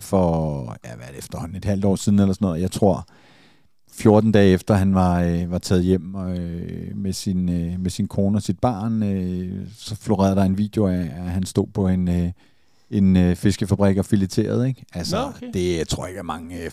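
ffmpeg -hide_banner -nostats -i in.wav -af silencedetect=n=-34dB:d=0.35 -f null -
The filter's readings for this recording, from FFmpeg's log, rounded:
silence_start: 3.03
silence_end: 3.95 | silence_duration: 0.92
silence_start: 12.32
silence_end: 12.91 | silence_duration: 0.59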